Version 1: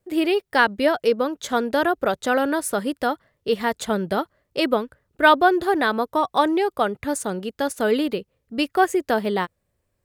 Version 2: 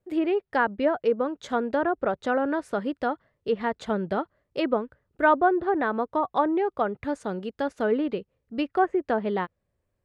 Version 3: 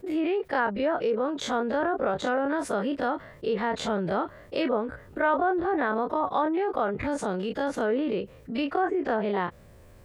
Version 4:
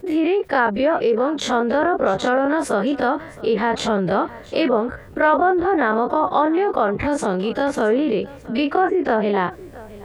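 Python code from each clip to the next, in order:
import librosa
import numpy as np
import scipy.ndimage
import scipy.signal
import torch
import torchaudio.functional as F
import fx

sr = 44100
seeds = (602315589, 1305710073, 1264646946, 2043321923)

y1 = fx.env_lowpass_down(x, sr, base_hz=1600.0, full_db=-15.5)
y1 = fx.high_shelf(y1, sr, hz=3400.0, db=-9.5)
y1 = y1 * 10.0 ** (-3.5 / 20.0)
y2 = fx.spec_dilate(y1, sr, span_ms=60)
y2 = fx.env_flatten(y2, sr, amount_pct=50)
y2 = y2 * 10.0 ** (-8.0 / 20.0)
y3 = y2 + 10.0 ** (-19.5 / 20.0) * np.pad(y2, (int(668 * sr / 1000.0), 0))[:len(y2)]
y3 = y3 * 10.0 ** (8.0 / 20.0)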